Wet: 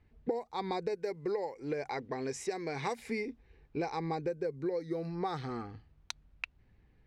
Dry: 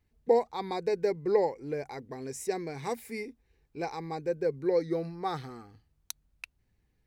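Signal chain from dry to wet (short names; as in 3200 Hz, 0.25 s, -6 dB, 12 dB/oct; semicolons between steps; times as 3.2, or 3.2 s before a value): low-pass opened by the level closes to 2800 Hz, open at -24 dBFS; 0.95–2.99 low shelf 380 Hz -8 dB; compressor 16:1, threshold -39 dBFS, peak gain reduction 21.5 dB; gain +8 dB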